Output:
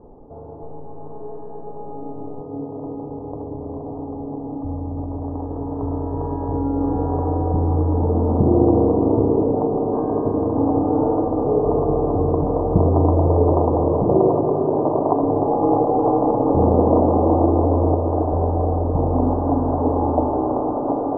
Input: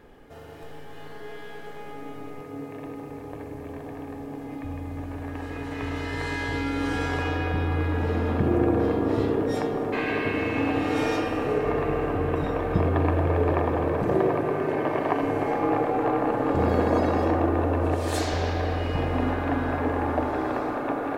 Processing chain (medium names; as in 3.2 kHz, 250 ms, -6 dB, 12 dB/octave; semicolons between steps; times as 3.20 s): steep low-pass 1 kHz 48 dB/octave; trim +7 dB